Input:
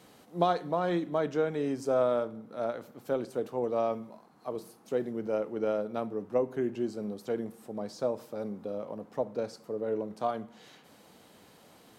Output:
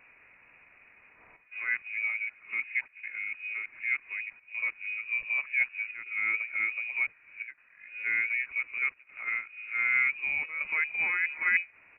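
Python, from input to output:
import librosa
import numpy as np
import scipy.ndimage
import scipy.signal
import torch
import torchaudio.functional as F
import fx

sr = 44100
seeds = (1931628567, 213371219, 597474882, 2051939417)

y = np.flip(x).copy()
y = fx.chopper(y, sr, hz=0.66, depth_pct=65, duty_pct=90)
y = fx.freq_invert(y, sr, carrier_hz=2700)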